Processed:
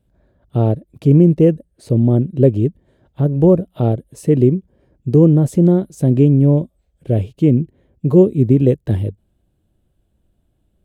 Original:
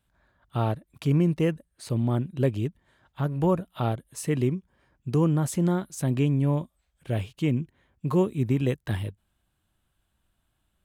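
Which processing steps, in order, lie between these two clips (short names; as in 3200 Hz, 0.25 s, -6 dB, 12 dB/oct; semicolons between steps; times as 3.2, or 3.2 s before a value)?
resonant low shelf 740 Hz +13 dB, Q 1.5; gain -2 dB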